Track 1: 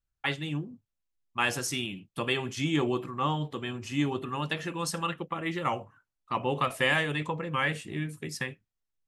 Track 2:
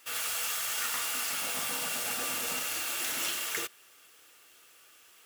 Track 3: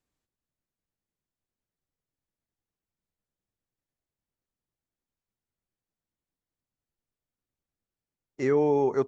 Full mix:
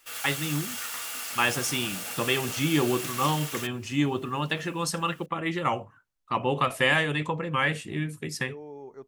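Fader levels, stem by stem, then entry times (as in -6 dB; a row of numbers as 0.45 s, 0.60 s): +3.0 dB, -2.5 dB, -19.0 dB; 0.00 s, 0.00 s, 0.00 s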